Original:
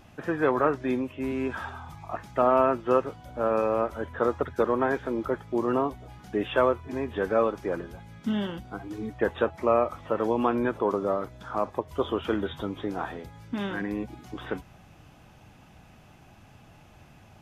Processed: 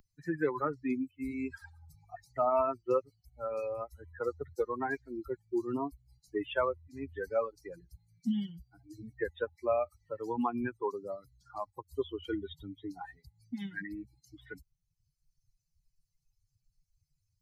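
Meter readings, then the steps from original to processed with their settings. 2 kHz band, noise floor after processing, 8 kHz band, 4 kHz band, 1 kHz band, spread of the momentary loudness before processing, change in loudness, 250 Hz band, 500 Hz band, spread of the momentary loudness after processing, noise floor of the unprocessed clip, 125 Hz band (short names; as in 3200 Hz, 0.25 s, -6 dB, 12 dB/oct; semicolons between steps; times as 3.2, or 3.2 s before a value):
-7.5 dB, -82 dBFS, n/a, -9.0 dB, -9.0 dB, 13 LU, -8.0 dB, -7.5 dB, -8.5 dB, 18 LU, -54 dBFS, -9.5 dB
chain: per-bin expansion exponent 3; three-band squash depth 40%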